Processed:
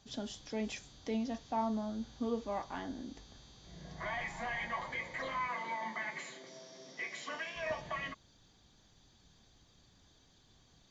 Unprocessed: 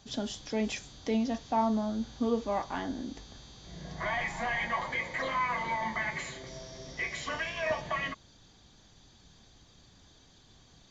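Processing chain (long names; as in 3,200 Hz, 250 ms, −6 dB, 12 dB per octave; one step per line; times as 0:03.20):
0:05.48–0:07.56: high-pass filter 190 Hz 24 dB per octave
level −6.5 dB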